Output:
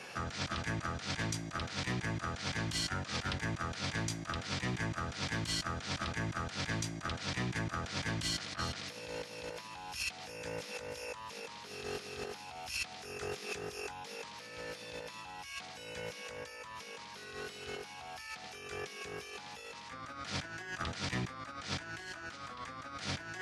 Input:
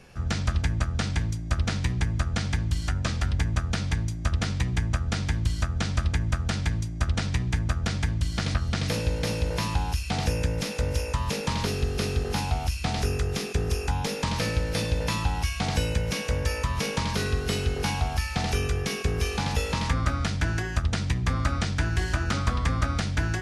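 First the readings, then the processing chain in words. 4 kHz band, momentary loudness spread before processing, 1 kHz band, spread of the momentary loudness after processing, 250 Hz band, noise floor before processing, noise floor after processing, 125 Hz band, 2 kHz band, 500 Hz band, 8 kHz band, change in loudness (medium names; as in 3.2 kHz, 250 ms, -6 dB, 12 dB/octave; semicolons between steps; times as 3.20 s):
-7.0 dB, 2 LU, -9.0 dB, 9 LU, -11.5 dB, -33 dBFS, -49 dBFS, -16.5 dB, -7.0 dB, -10.5 dB, -8.0 dB, -12.0 dB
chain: frequency weighting A; peak limiter -23.5 dBFS, peak gain reduction 8.5 dB; compressor with a negative ratio -41 dBFS, ratio -0.5; trim +1.5 dB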